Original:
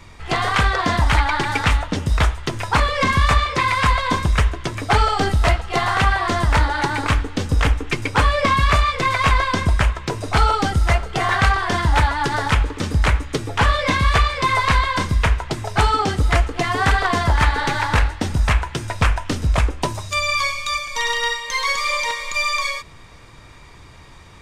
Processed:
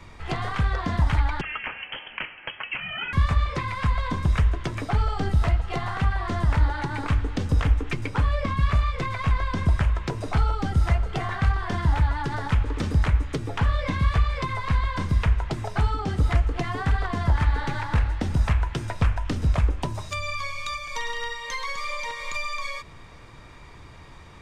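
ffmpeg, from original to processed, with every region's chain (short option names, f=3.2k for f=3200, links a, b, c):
-filter_complex "[0:a]asettb=1/sr,asplit=3[a][b][c];[a]atrim=end=1.414[d];[b]atrim=start=1.41:end=3.13,asetpts=PTS-STARTPTS,afade=t=in:d=0.004:c=qsin,afade=t=out:st=1.716:d=0.004:c=qsin,highpass=f=450:w=0.5412,highpass=f=450:w=1.3066,lowpass=f=3.1k:t=q:w=0.5098,lowpass=f=3.1k:t=q:w=0.6013,lowpass=f=3.1k:t=q:w=0.9,lowpass=f=3.1k:t=q:w=2.563,afreqshift=-3600[e];[c]atrim=start=3.126[f];[d][e]acrossfade=d=0.004:c1=hsin:c2=qsin[g];[g][f]acrossfade=d=0.004:c1=qsin:c2=hsin,highshelf=f=3.8k:g=-7,bandreject=f=50.3:t=h:w=4,bandreject=f=100.6:t=h:w=4,acrossover=split=220[h][i];[i]acompressor=threshold=-27dB:ratio=10[j];[h][j]amix=inputs=2:normalize=0,volume=-1.5dB"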